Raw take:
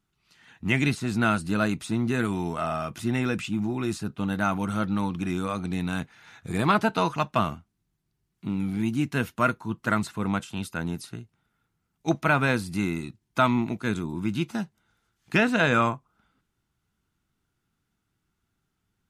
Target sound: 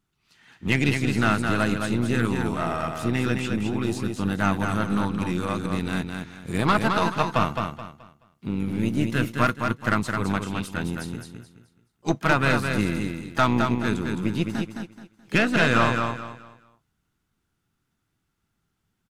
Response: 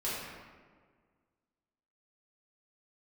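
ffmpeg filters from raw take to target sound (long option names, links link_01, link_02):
-filter_complex "[0:a]asplit=3[link_01][link_02][link_03];[link_02]asetrate=35002,aresample=44100,atempo=1.25992,volume=-16dB[link_04];[link_03]asetrate=55563,aresample=44100,atempo=0.793701,volume=-14dB[link_05];[link_01][link_04][link_05]amix=inputs=3:normalize=0,aeval=exprs='0.422*(cos(1*acos(clip(val(0)/0.422,-1,1)))-cos(1*PI/2))+0.0473*(cos(6*acos(clip(val(0)/0.422,-1,1)))-cos(6*PI/2))+0.00841*(cos(8*acos(clip(val(0)/0.422,-1,1)))-cos(8*PI/2))':channel_layout=same,aecho=1:1:214|428|642|856:0.562|0.163|0.0473|0.0137"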